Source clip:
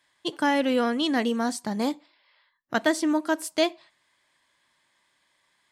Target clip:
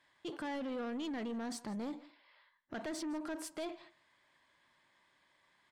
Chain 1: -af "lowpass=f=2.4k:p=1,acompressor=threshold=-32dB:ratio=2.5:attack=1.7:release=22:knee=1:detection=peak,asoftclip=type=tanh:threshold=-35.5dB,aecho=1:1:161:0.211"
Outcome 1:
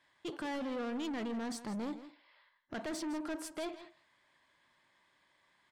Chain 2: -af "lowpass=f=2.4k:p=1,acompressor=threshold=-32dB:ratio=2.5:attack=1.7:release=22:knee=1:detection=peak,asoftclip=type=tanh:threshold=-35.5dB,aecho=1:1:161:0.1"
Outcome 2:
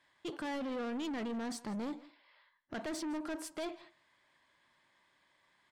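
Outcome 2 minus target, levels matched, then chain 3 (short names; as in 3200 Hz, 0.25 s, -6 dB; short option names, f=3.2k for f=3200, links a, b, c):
compressor: peak gain reduction -4 dB
-af "lowpass=f=2.4k:p=1,acompressor=threshold=-39dB:ratio=2.5:attack=1.7:release=22:knee=1:detection=peak,asoftclip=type=tanh:threshold=-35.5dB,aecho=1:1:161:0.1"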